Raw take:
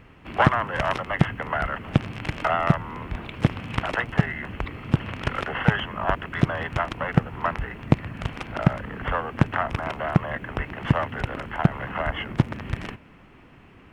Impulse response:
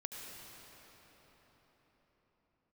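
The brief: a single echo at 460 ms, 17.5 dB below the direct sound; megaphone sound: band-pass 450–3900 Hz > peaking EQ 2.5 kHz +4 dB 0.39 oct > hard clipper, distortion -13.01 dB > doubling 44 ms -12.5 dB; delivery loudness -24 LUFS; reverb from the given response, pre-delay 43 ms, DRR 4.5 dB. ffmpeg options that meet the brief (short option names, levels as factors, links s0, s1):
-filter_complex "[0:a]aecho=1:1:460:0.133,asplit=2[s0][s1];[1:a]atrim=start_sample=2205,adelay=43[s2];[s1][s2]afir=irnorm=-1:irlink=0,volume=0.668[s3];[s0][s3]amix=inputs=2:normalize=0,highpass=450,lowpass=3900,equalizer=f=2500:t=o:w=0.39:g=4,asoftclip=type=hard:threshold=0.126,asplit=2[s4][s5];[s5]adelay=44,volume=0.237[s6];[s4][s6]amix=inputs=2:normalize=0,volume=1.68"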